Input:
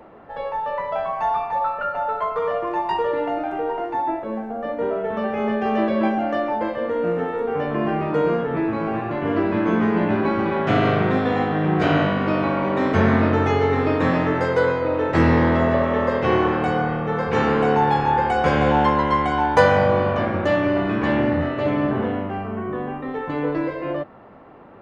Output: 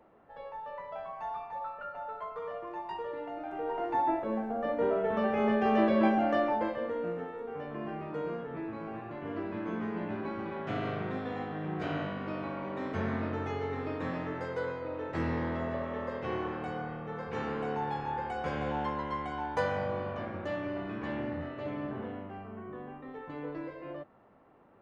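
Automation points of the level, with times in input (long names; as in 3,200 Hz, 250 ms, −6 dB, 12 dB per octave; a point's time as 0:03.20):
0:03.32 −16 dB
0:03.95 −5 dB
0:06.43 −5 dB
0:07.35 −16 dB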